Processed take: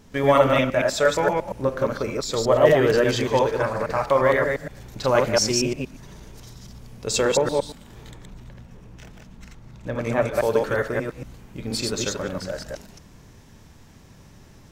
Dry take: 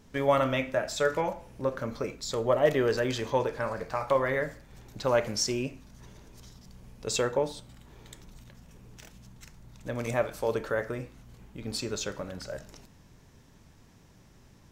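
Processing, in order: chunks repeated in reverse 117 ms, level -1 dB; 8.10–10.34 s: treble shelf 3.3 kHz -> 5.1 kHz -12 dB; trim +5.5 dB

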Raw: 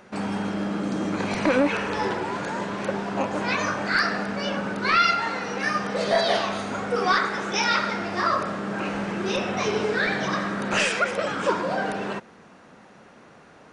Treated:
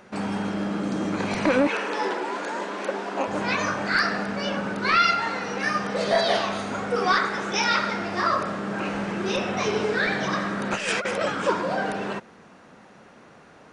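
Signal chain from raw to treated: 1.67–3.28 s: high-pass 260 Hz 24 dB/octave; 10.74–11.30 s: compressor with a negative ratio -25 dBFS, ratio -0.5

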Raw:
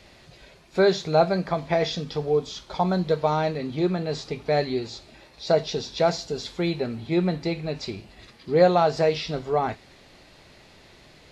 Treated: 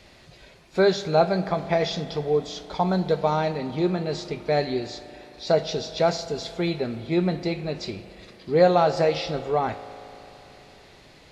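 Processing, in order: spring tank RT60 3.4 s, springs 37 ms, chirp 70 ms, DRR 12.5 dB

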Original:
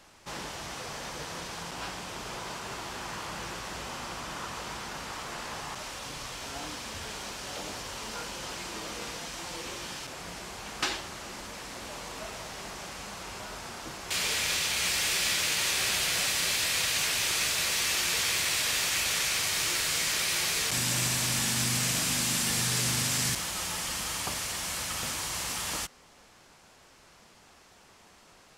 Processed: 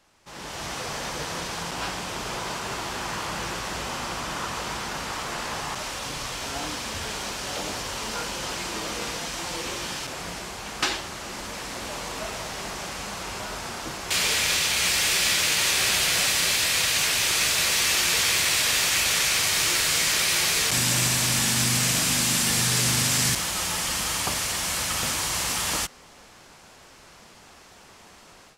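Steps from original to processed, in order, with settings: level rider gain up to 14 dB; trim -7 dB

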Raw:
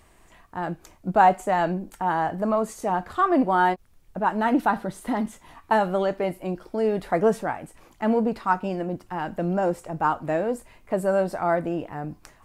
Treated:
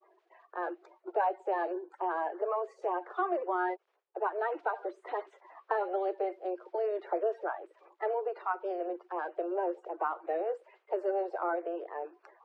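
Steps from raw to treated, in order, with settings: coarse spectral quantiser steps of 30 dB; compression 3:1, threshold -25 dBFS, peak gain reduction 9.5 dB; steep high-pass 350 Hz 96 dB/octave; expander -57 dBFS; tape spacing loss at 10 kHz 40 dB

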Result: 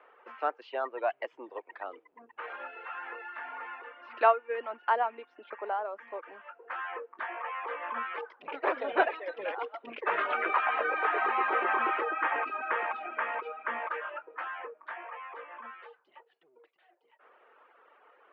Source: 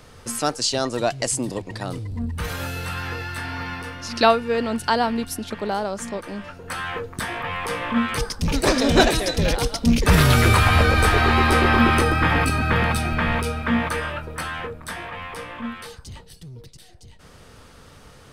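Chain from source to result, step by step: reverb removal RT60 0.93 s; elliptic band-pass 350–2900 Hz, stop band 50 dB; three-band isolator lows -13 dB, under 540 Hz, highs -19 dB, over 2.1 kHz; trim -3.5 dB

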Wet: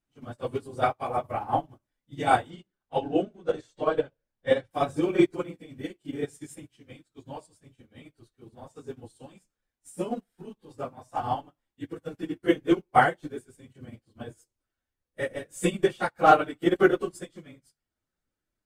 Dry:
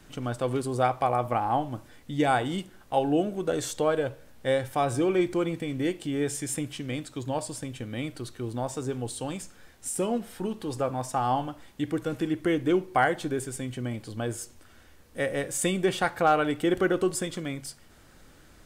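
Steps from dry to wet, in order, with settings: phase randomisation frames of 50 ms; 2.50–4.71 s: low-pass 5.8 kHz 12 dB/octave; upward expansion 2.5:1, over -44 dBFS; trim +6 dB

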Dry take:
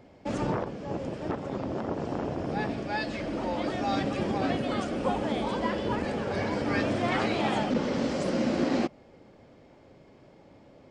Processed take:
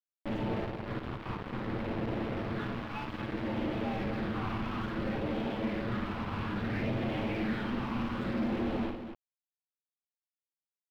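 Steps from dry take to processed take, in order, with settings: comb filter that takes the minimum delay 9 ms; de-hum 87.71 Hz, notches 38; in parallel at -0.5 dB: compression 6:1, threshold -43 dBFS, peak gain reduction 18 dB; on the sum: phase shifter stages 8, 0.6 Hz, lowest notch 530–1500 Hz; saturation -32.5 dBFS, distortion -9 dB; bit crusher 6-bit; distance through air 390 m; on a send: loudspeakers at several distances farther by 19 m -7 dB, 83 m -9 dB

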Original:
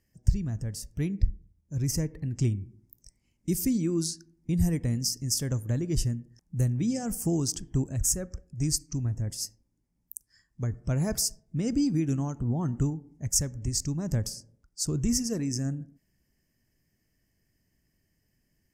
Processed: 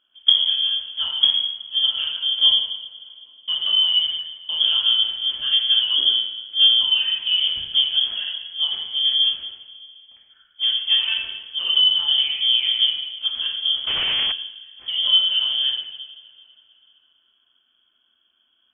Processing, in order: block-companded coder 5-bit; two-slope reverb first 0.89 s, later 3.4 s, from -20 dB, DRR -4.5 dB; 13.87–14.32 s: Schmitt trigger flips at -43.5 dBFS; frequency inversion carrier 3.3 kHz; trim +1.5 dB

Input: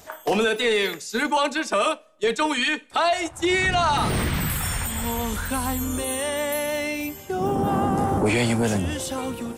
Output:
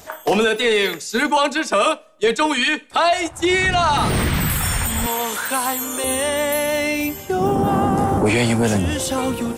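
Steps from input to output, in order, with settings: 5.06–6.04 s: high-pass 430 Hz 12 dB/octave; in parallel at -2.5 dB: gain riding 0.5 s

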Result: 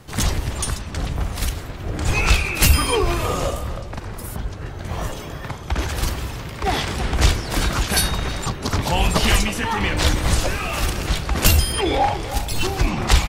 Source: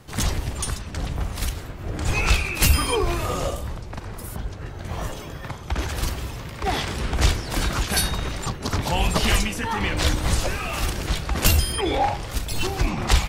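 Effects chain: speakerphone echo 320 ms, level -12 dB; trim +3 dB

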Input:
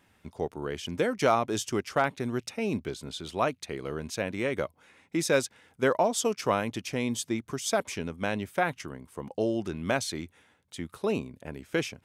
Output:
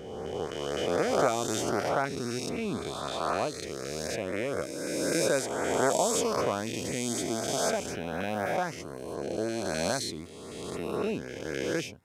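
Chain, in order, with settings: reverse spectral sustain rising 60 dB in 2.27 s; LFO notch saw up 3.9 Hz 860–3500 Hz; trim -5 dB

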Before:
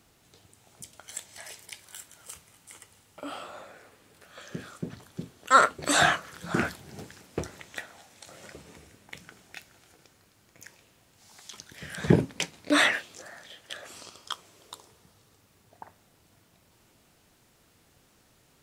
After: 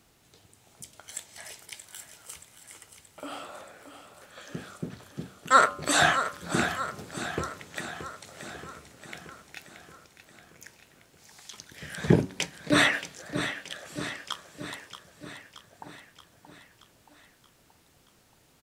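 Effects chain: de-hum 95.26 Hz, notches 16; on a send: feedback delay 627 ms, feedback 60%, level -10.5 dB

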